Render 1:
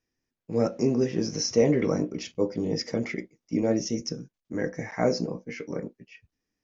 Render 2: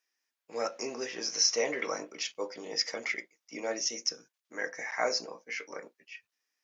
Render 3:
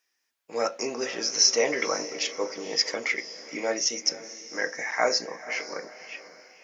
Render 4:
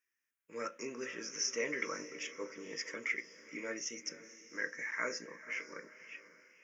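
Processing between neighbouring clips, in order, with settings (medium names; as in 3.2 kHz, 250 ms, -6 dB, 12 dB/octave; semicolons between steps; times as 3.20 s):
high-pass 1 kHz 12 dB/octave; trim +4 dB
echo that smears into a reverb 513 ms, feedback 40%, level -14.5 dB; trim +6 dB
static phaser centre 1.8 kHz, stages 4; trim -7.5 dB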